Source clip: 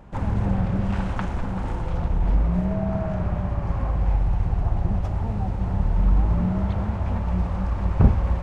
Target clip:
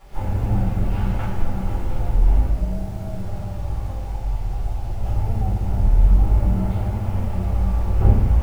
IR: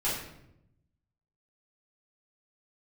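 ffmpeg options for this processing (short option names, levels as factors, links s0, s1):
-filter_complex "[0:a]equalizer=f=160:t=o:w=0.33:g=-9,equalizer=f=1000:t=o:w=0.33:g=-6,equalizer=f=1600:t=o:w=0.33:g=-3,asettb=1/sr,asplit=3[s0][s1][s2];[s0]atrim=end=2.454[s3];[s1]atrim=start=2.45:end=5,asetpts=PTS-STARTPTS,afade=t=in:d=0.004:c=qsin,afade=t=out:st=2.546:d=0.004:c=qsin,acrossover=split=460|1400[s4][s5][s6];[s4]acompressor=threshold=0.0398:ratio=4[s7];[s5]acompressor=threshold=0.00794:ratio=4[s8];[s6]acompressor=threshold=0.00141:ratio=4[s9];[s7][s8][s9]amix=inputs=3:normalize=0[s10];[s2]atrim=start=4.996[s11];[s3][s10]acrossfade=d=0.004:c1=hsin:c2=qsin[s12];[s12][s11]acrossfade=d=0.004:c1=qsin:c2=hsin,acrusher=bits=7:mix=0:aa=0.000001[s13];[1:a]atrim=start_sample=2205[s14];[s13][s14]afir=irnorm=-1:irlink=0,volume=0.398"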